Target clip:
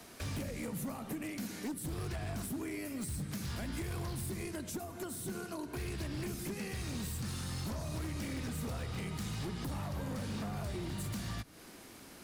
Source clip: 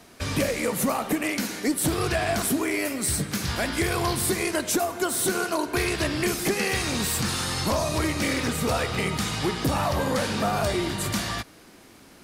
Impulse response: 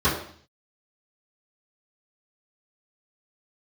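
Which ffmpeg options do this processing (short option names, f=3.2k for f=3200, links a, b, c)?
-filter_complex "[0:a]highshelf=f=8.6k:g=5.5,acrossover=split=230[a][b];[a]alimiter=level_in=6.5dB:limit=-24dB:level=0:latency=1:release=38,volume=-6.5dB[c];[b]acompressor=threshold=-40dB:ratio=8[d];[c][d]amix=inputs=2:normalize=0,aeval=exprs='0.0316*(abs(mod(val(0)/0.0316+3,4)-2)-1)':c=same,volume=-3dB"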